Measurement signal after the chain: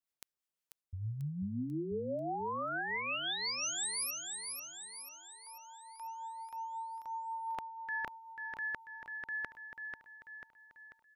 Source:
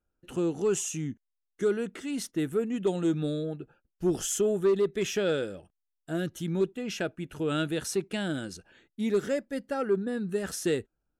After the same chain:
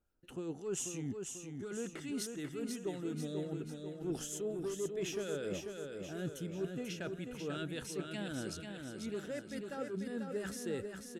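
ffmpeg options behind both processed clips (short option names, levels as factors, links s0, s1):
-filter_complex "[0:a]areverse,acompressor=threshold=0.0126:ratio=6,areverse,acrossover=split=1200[s0][s1];[s0]aeval=exprs='val(0)*(1-0.5/2+0.5/2*cos(2*PI*5.6*n/s))':c=same[s2];[s1]aeval=exprs='val(0)*(1-0.5/2-0.5/2*cos(2*PI*5.6*n/s))':c=same[s3];[s2][s3]amix=inputs=2:normalize=0,aecho=1:1:491|982|1473|1964|2455|2946|3437:0.531|0.276|0.144|0.0746|0.0388|0.0202|0.0105,volume=1.26"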